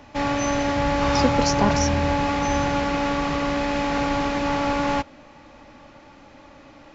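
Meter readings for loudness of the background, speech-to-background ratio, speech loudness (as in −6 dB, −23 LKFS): −23.0 LKFS, −3.5 dB, −26.5 LKFS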